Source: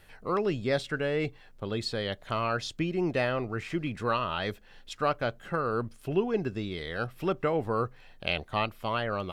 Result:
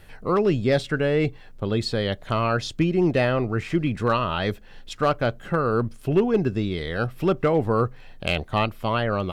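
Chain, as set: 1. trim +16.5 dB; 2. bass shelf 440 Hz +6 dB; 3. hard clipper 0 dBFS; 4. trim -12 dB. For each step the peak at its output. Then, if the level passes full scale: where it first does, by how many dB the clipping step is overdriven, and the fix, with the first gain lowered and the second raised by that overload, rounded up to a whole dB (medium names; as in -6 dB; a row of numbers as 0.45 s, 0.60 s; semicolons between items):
+4.5 dBFS, +5.0 dBFS, 0.0 dBFS, -12.0 dBFS; step 1, 5.0 dB; step 1 +11.5 dB, step 4 -7 dB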